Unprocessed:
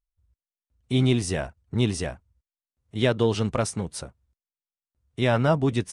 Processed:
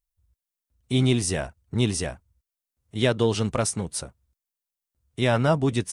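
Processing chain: high shelf 6700 Hz +9.5 dB

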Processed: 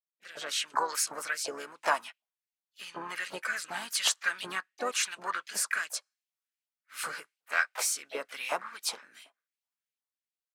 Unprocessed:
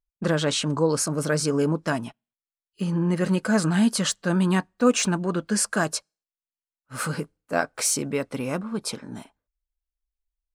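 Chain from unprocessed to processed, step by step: opening faded in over 0.83 s; compressor 1.5:1, threshold -27 dBFS, peak gain reduction 5 dB; rotary speaker horn 0.9 Hz; LFO high-pass saw up 2.7 Hz 720–3000 Hz; harmoniser -4 st -16 dB, +3 st -11 dB, +7 st -12 dB

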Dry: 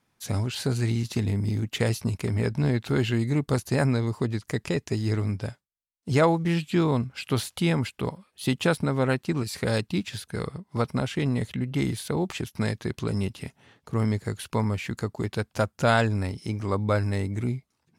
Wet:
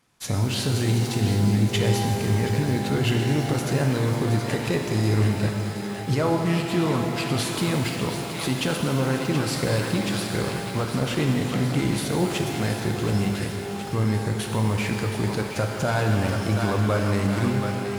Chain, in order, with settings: CVSD 64 kbps; on a send: thinning echo 0.724 s, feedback 69%, high-pass 860 Hz, level -9 dB; on the sum: limiter -19 dBFS, peak gain reduction 9.5 dB; shimmer reverb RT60 2.9 s, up +12 st, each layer -8 dB, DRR 2 dB; gain +4 dB

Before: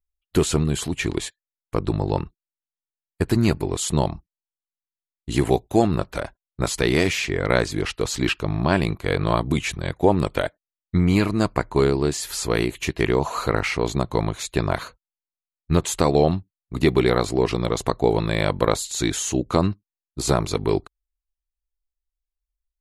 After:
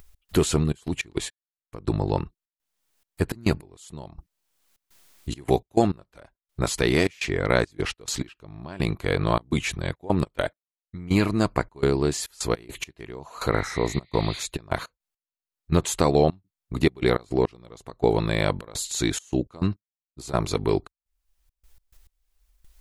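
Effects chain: spectral repair 13.56–14.37, 1800–4900 Hz both; step gate "x.xxx.x.x....xxx" 104 bpm -24 dB; upward compressor, threshold -26 dBFS; gain -1.5 dB

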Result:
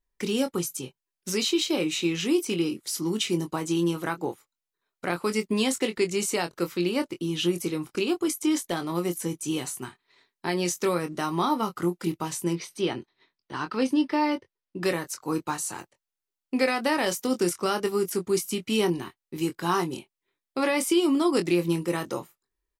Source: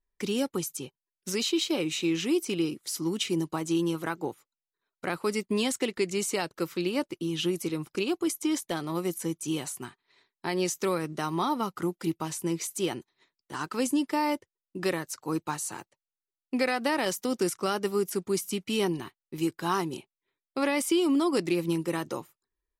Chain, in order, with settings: 12.53–14.83 polynomial smoothing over 15 samples; doubler 23 ms -8 dB; gain +2 dB

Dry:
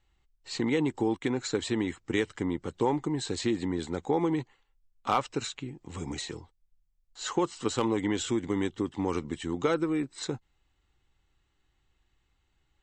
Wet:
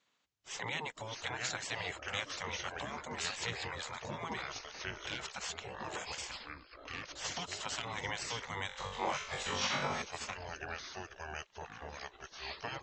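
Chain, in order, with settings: echoes that change speed 0.488 s, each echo -4 st, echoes 3, each echo -6 dB; elliptic low-pass 7000 Hz, stop band 50 dB; low shelf 150 Hz -11 dB; in parallel at +0.5 dB: limiter -25 dBFS, peak gain reduction 11 dB; on the sum: compressor 2:1, threshold -25 dBFS, peak gain reduction 4 dB; 8.67–10.02 flutter echo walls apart 3.6 m, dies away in 0.58 s; spectral gate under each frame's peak -15 dB weak; gain -1 dB

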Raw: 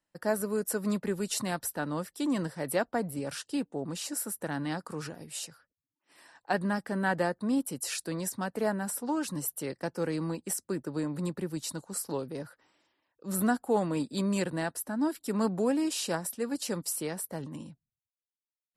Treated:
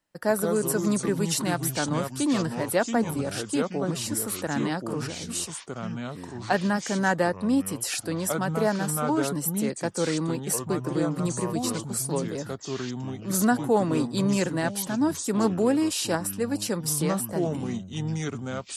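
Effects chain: echoes that change speed 0.106 s, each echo -4 st, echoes 2, each echo -6 dB; gain +5 dB

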